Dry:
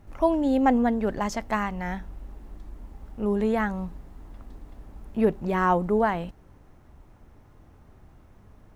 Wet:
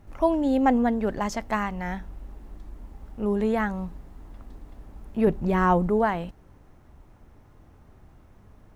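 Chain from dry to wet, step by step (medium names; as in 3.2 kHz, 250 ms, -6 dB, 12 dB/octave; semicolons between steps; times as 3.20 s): 5.27–5.90 s: bass shelf 210 Hz +7.5 dB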